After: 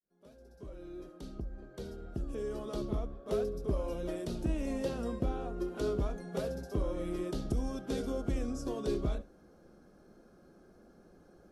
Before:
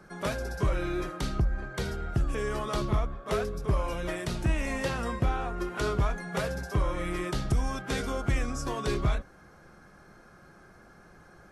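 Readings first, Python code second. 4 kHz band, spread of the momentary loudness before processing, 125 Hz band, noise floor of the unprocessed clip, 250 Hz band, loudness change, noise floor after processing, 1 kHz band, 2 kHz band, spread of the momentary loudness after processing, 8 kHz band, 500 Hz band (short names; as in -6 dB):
-11.0 dB, 4 LU, -9.0 dB, -55 dBFS, -2.5 dB, -6.0 dB, -61 dBFS, -12.0 dB, -16.5 dB, 12 LU, -10.5 dB, -3.0 dB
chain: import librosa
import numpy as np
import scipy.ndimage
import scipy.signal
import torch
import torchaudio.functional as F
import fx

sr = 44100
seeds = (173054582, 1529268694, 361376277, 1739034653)

y = fx.fade_in_head(x, sr, length_s=3.46)
y = fx.graphic_eq_10(y, sr, hz=(125, 250, 500, 1000, 2000, 8000), db=(-6, 7, 5, -6, -11, -4))
y = fx.room_flutter(y, sr, wall_m=11.9, rt60_s=0.21)
y = F.gain(torch.from_numpy(y), -6.0).numpy()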